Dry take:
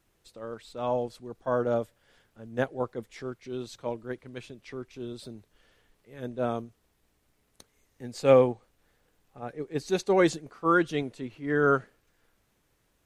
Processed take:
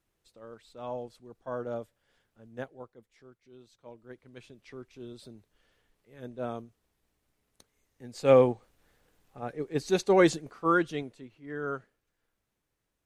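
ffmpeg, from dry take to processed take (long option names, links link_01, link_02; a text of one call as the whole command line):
ffmpeg -i in.wav -af "volume=10.5dB,afade=type=out:start_time=2.47:duration=0.45:silence=0.334965,afade=type=in:start_time=3.8:duration=0.82:silence=0.251189,afade=type=in:start_time=8.06:duration=0.42:silence=0.446684,afade=type=out:start_time=10.43:duration=0.85:silence=0.237137" out.wav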